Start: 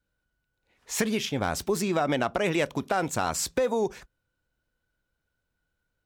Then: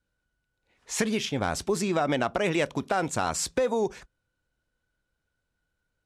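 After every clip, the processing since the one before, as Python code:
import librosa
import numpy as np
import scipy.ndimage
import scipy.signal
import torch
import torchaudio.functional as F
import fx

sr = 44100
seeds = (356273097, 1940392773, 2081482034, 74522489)

y = scipy.signal.sosfilt(scipy.signal.butter(4, 11000.0, 'lowpass', fs=sr, output='sos'), x)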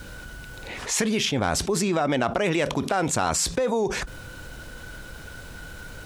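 y = fx.env_flatten(x, sr, amount_pct=70)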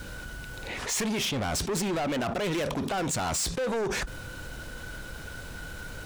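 y = np.clip(x, -10.0 ** (-26.5 / 20.0), 10.0 ** (-26.5 / 20.0))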